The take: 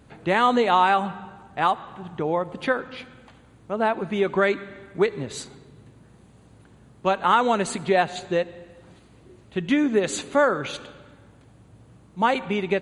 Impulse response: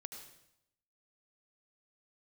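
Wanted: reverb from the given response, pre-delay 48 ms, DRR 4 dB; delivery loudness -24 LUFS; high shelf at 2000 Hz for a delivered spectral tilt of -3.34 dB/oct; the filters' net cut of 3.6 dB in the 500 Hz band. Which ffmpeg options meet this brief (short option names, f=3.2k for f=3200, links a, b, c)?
-filter_complex "[0:a]equalizer=f=500:t=o:g=-5,highshelf=f=2k:g=6.5,asplit=2[a][b];[1:a]atrim=start_sample=2205,adelay=48[c];[b][c]afir=irnorm=-1:irlink=0,volume=0dB[d];[a][d]amix=inputs=2:normalize=0,volume=-1.5dB"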